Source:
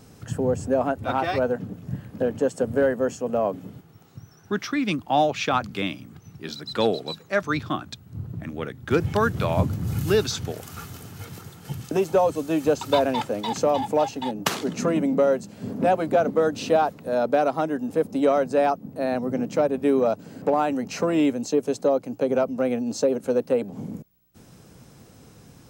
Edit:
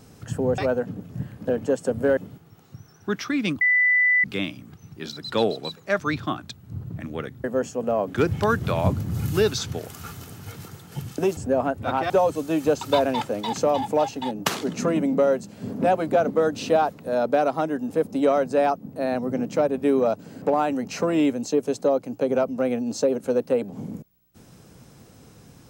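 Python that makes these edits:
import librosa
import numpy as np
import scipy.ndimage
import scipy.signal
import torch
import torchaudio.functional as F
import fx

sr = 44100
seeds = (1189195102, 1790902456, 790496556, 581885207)

y = fx.edit(x, sr, fx.move(start_s=0.58, length_s=0.73, to_s=12.1),
    fx.move(start_s=2.9, length_s=0.7, to_s=8.87),
    fx.bleep(start_s=5.04, length_s=0.63, hz=1990.0, db=-15.5), tone=tone)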